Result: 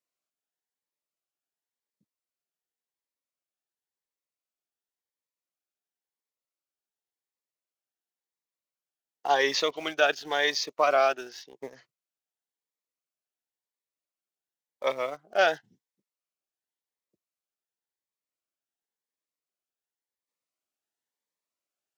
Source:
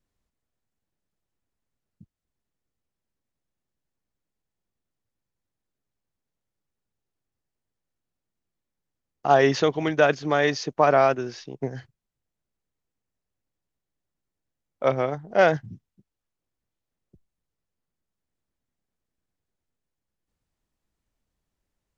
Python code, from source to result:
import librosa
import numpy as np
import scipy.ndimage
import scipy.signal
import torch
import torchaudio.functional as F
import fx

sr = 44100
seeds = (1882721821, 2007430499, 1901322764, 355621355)

p1 = scipy.signal.sosfilt(scipy.signal.butter(2, 560.0, 'highpass', fs=sr, output='sos'), x)
p2 = fx.dynamic_eq(p1, sr, hz=3700.0, q=1.1, threshold_db=-44.0, ratio=4.0, max_db=7)
p3 = np.where(np.abs(p2) >= 10.0 ** (-35.0 / 20.0), p2, 0.0)
p4 = p2 + F.gain(torch.from_numpy(p3), -8.0).numpy()
p5 = fx.notch_cascade(p4, sr, direction='rising', hz=0.93)
y = F.gain(torch.from_numpy(p5), -4.0).numpy()